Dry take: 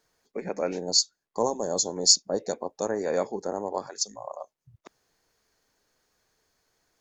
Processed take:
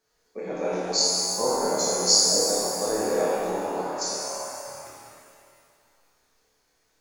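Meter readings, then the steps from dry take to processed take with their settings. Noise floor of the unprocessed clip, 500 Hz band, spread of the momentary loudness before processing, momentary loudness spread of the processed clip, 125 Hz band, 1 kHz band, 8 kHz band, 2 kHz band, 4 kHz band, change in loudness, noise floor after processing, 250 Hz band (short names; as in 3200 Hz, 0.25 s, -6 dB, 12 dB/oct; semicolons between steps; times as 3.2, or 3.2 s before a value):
-84 dBFS, +3.0 dB, 17 LU, 17 LU, +2.0 dB, +5.0 dB, +3.5 dB, +6.0 dB, +2.5 dB, +3.0 dB, -70 dBFS, +2.5 dB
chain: flutter echo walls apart 4.7 m, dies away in 0.37 s; shimmer reverb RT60 2.2 s, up +7 st, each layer -8 dB, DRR -6.5 dB; gain -6.5 dB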